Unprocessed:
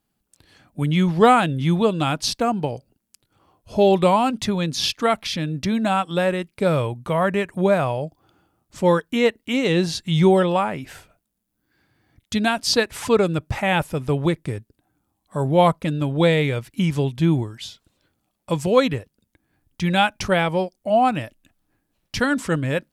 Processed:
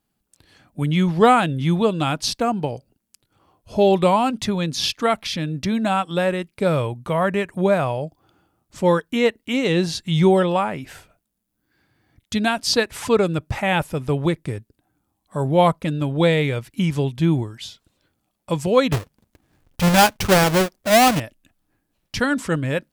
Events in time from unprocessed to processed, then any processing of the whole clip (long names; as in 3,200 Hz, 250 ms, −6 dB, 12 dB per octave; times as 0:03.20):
0:18.92–0:21.20: each half-wave held at its own peak